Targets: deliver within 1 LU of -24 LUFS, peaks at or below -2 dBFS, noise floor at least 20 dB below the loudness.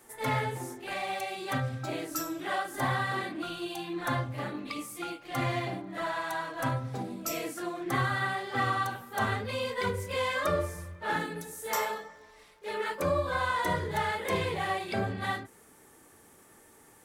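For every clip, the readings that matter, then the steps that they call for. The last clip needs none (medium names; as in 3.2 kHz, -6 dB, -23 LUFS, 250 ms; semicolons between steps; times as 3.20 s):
tick rate 23 per s; loudness -32.5 LUFS; peak level -17.0 dBFS; loudness target -24.0 LUFS
-> de-click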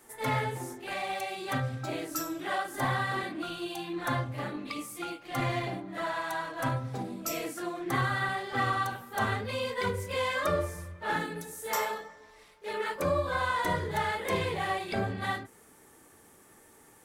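tick rate 0.18 per s; loudness -32.5 LUFS; peak level -17.0 dBFS; loudness target -24.0 LUFS
-> trim +8.5 dB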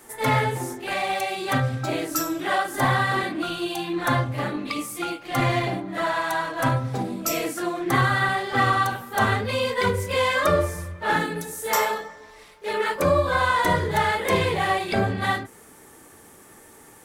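loudness -24.0 LUFS; peak level -8.5 dBFS; noise floor -49 dBFS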